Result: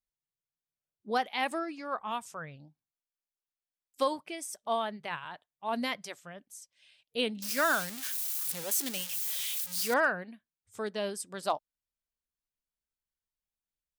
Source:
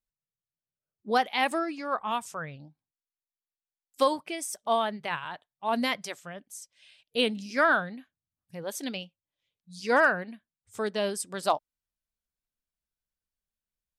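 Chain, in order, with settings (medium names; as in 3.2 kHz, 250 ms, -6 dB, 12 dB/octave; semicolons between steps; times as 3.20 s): 7.42–9.94 s: zero-crossing glitches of -19.5 dBFS; trim -5 dB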